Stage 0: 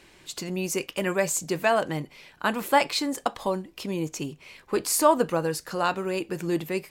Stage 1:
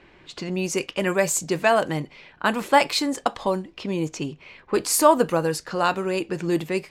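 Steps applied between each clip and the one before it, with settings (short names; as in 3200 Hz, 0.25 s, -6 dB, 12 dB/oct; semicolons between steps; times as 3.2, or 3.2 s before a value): low-pass opened by the level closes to 2300 Hz, open at -21.5 dBFS; gain +3.5 dB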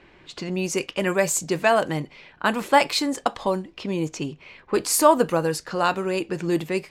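nothing audible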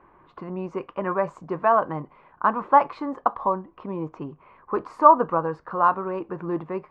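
synth low-pass 1100 Hz, resonance Q 4.9; gain -5.5 dB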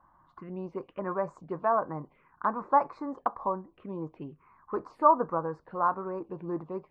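envelope phaser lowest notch 390 Hz, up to 3100 Hz, full sweep at -24.5 dBFS; gain -6 dB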